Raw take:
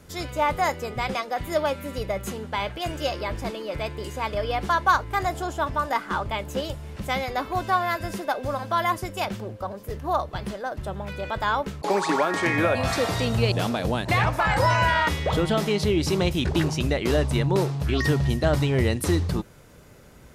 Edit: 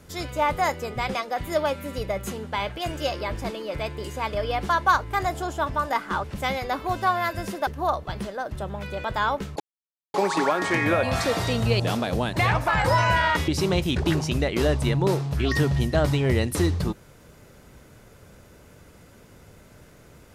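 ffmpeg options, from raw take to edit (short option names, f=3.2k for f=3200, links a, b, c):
-filter_complex "[0:a]asplit=5[a][b][c][d][e];[a]atrim=end=6.242[f];[b]atrim=start=6.898:end=8.332[g];[c]atrim=start=9.928:end=11.86,asetpts=PTS-STARTPTS,afade=t=out:st=1.928:d=0.004:c=hsin,apad=pad_dur=0.54[h];[d]atrim=start=11.86:end=15.202,asetpts=PTS-STARTPTS,afade=t=in:d=0.004:c=hsin[i];[e]atrim=start=15.968[j];[f][g]acrossfade=d=0.004:c1=hsin:c2=hsin[k];[h][i]concat=n=2:v=0:a=1[l];[k][l]acrossfade=d=0.004:c1=hsin:c2=hsin[m];[m][j]acrossfade=d=0.004:c1=hsin:c2=hsin"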